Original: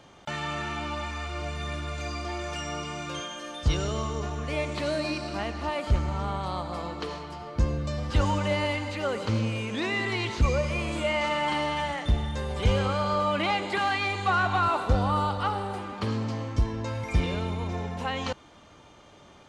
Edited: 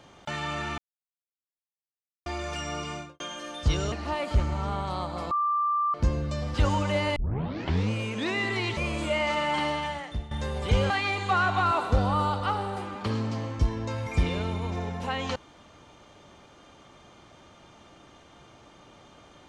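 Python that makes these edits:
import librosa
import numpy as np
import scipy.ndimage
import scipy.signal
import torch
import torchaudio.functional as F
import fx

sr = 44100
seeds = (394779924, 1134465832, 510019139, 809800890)

y = fx.studio_fade_out(x, sr, start_s=2.92, length_s=0.28)
y = fx.edit(y, sr, fx.silence(start_s=0.78, length_s=1.48),
    fx.cut(start_s=3.92, length_s=1.56),
    fx.bleep(start_s=6.87, length_s=0.63, hz=1180.0, db=-22.5),
    fx.tape_start(start_s=8.72, length_s=0.75),
    fx.cut(start_s=10.33, length_s=0.38),
    fx.fade_out_to(start_s=11.61, length_s=0.64, floor_db=-15.0),
    fx.cut(start_s=12.84, length_s=1.03), tone=tone)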